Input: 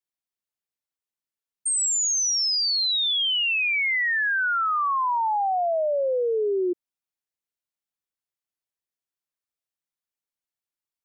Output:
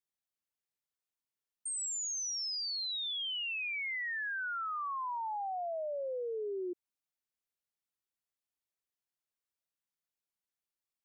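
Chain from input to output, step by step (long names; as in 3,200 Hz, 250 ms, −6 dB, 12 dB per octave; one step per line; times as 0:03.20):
brickwall limiter −30.5 dBFS, peak gain reduction 10 dB
level −3.5 dB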